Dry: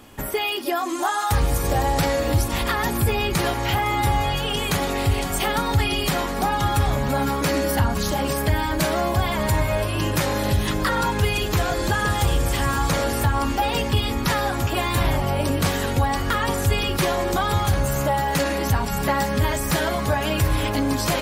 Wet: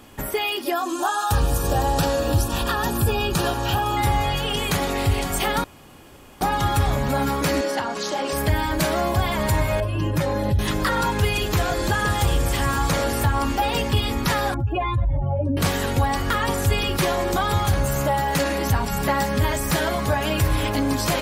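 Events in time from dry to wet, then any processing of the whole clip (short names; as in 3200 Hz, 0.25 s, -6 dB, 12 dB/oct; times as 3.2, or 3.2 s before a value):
0.74–3.97 Butterworth band-stop 2100 Hz, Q 3.6
5.64–6.41 room tone
7.61–8.33 Chebyshev band-pass 360–6300 Hz
9.8–10.59 spectral contrast raised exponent 1.5
14.54–15.57 spectral contrast raised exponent 2.5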